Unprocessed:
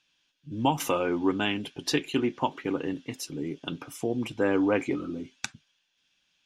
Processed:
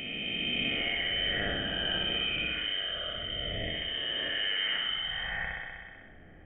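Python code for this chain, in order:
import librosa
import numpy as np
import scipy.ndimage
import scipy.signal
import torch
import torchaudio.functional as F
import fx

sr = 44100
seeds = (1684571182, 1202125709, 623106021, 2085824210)

y = fx.spec_swells(x, sr, rise_s=2.38)
y = scipy.signal.sosfilt(scipy.signal.butter(2, 440.0, 'highpass', fs=sr, output='sos'), y)
y = fx.peak_eq(y, sr, hz=1000.0, db=-7.5, octaves=1.4)
y = fx.fixed_phaser(y, sr, hz=2400.0, stages=6)
y = fx.room_flutter(y, sr, wall_m=10.8, rt60_s=0.97)
y = fx.freq_invert(y, sr, carrier_hz=3400)
y = fx.env_flatten(y, sr, amount_pct=50)
y = y * librosa.db_to_amplitude(-2.0)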